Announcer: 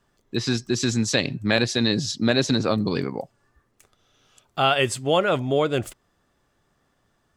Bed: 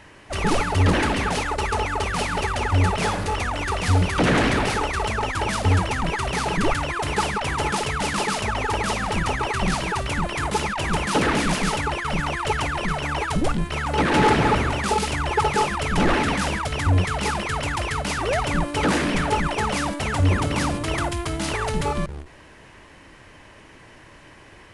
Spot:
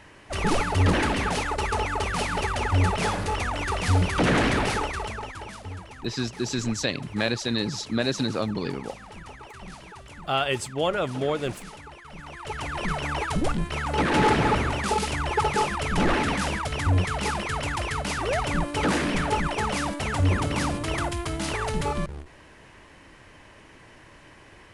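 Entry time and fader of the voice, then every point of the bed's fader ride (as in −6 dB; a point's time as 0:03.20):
5.70 s, −5.0 dB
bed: 0:04.75 −2.5 dB
0:05.73 −19 dB
0:12.12 −19 dB
0:12.85 −3 dB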